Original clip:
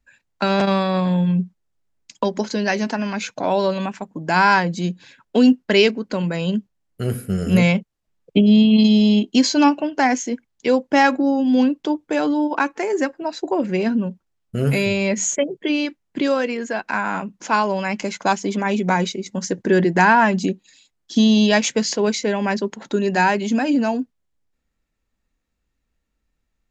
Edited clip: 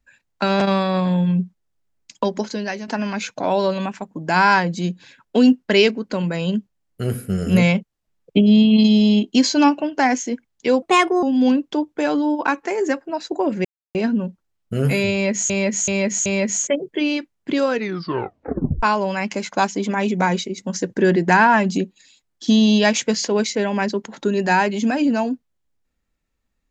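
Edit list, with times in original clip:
0:02.31–0:02.88: fade out, to −11.5 dB
0:10.82–0:11.35: play speed 130%
0:13.77: splice in silence 0.30 s
0:14.94–0:15.32: repeat, 4 plays
0:16.39: tape stop 1.12 s

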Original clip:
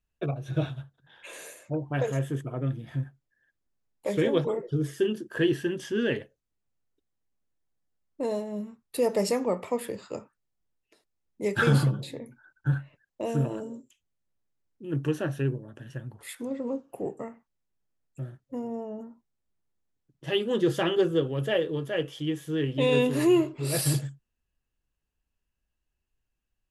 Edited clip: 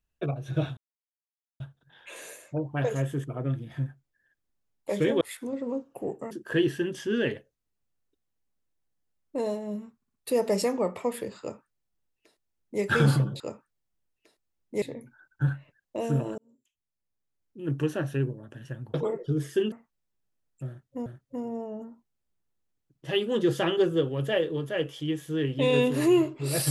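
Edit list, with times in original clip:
0:00.77: splice in silence 0.83 s
0:04.38–0:05.16: swap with 0:16.19–0:17.29
0:08.81: stutter 0.06 s, 4 plays
0:10.07–0:11.49: duplicate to 0:12.07
0:13.63–0:14.95: fade in
0:18.25–0:18.63: repeat, 2 plays

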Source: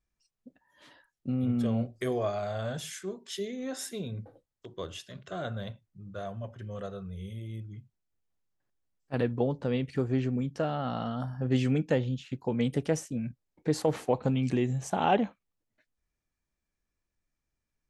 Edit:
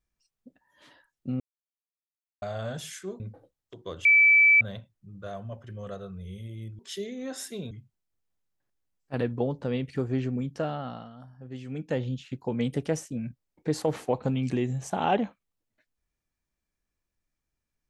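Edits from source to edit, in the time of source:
0:01.40–0:02.42: silence
0:03.20–0:04.12: move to 0:07.71
0:04.97–0:05.53: beep over 2,310 Hz −14.5 dBFS
0:10.68–0:12.07: duck −13.5 dB, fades 0.41 s linear

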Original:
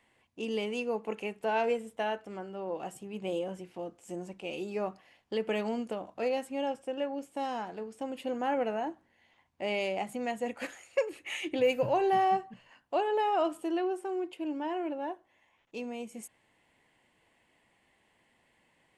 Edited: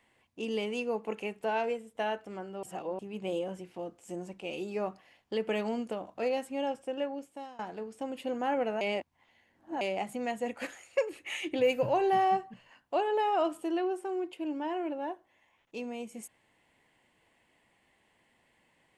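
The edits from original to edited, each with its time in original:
0:01.41–0:01.95: fade out, to −8 dB
0:02.63–0:02.99: reverse
0:07.03–0:07.59: fade out, to −21.5 dB
0:08.81–0:09.81: reverse

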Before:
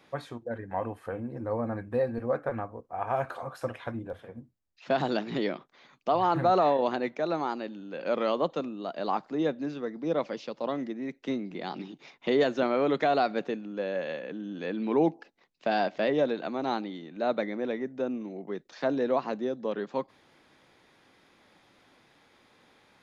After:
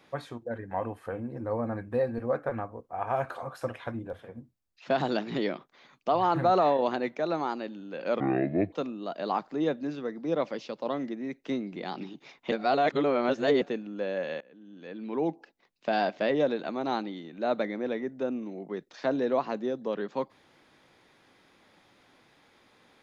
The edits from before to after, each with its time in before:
0:08.20–0:08.51: play speed 59%
0:12.30–0:13.40: reverse
0:14.19–0:15.74: fade in, from −22.5 dB

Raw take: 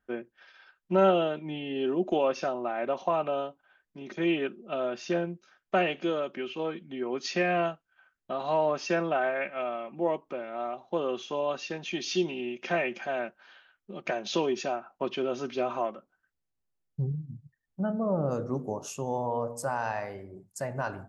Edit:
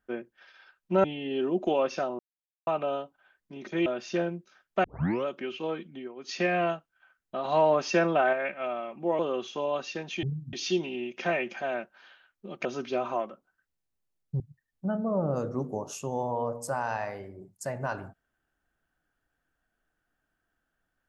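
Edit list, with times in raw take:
0:01.04–0:01.49: remove
0:02.64–0:03.12: silence
0:04.31–0:04.82: remove
0:05.80: tape start 0.42 s
0:06.86–0:07.36: duck −16 dB, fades 0.25 s
0:08.41–0:09.29: clip gain +3.5 dB
0:10.15–0:10.94: remove
0:14.10–0:15.30: remove
0:17.05–0:17.35: move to 0:11.98

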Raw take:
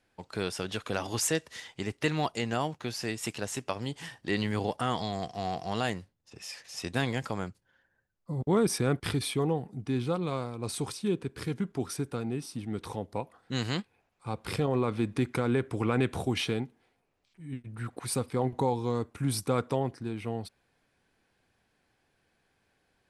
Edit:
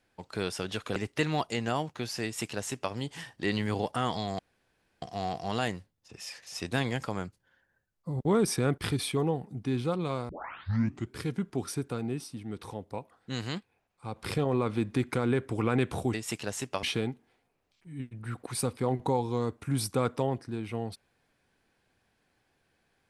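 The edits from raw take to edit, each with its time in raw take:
0:00.96–0:01.81: remove
0:03.09–0:03.78: duplicate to 0:16.36
0:05.24: splice in room tone 0.63 s
0:10.51: tape start 0.88 s
0:12.49–0:14.38: clip gain −3.5 dB

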